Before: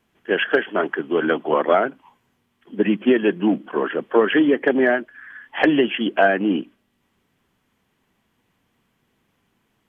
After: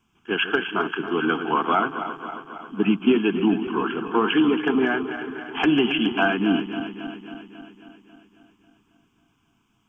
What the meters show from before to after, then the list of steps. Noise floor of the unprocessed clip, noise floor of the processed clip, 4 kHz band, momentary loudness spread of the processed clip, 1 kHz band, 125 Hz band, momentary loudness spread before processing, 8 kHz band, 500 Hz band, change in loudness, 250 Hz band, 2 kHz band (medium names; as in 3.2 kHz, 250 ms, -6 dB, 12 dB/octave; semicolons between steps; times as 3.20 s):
-69 dBFS, -67 dBFS, +2.0 dB, 15 LU, -0.5 dB, +1.5 dB, 7 LU, no reading, -6.0 dB, -3.0 dB, -0.5 dB, -2.5 dB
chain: backward echo that repeats 136 ms, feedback 78%, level -10.5 dB; static phaser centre 2.8 kHz, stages 8; trim +2 dB